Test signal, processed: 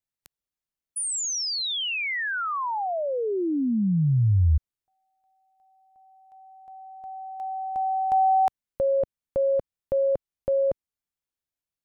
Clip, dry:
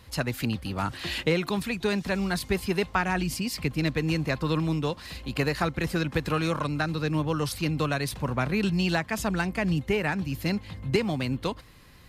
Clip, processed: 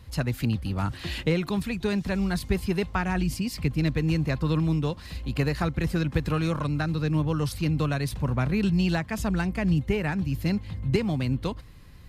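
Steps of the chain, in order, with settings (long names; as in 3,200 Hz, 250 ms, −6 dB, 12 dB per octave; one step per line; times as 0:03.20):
low-shelf EQ 190 Hz +12 dB
level −3.5 dB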